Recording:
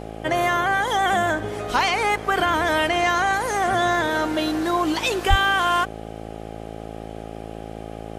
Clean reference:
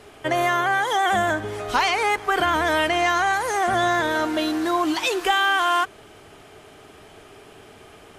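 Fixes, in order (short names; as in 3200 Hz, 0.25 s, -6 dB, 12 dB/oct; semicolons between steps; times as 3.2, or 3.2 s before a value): de-hum 54.7 Hz, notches 15; de-plosive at 5.29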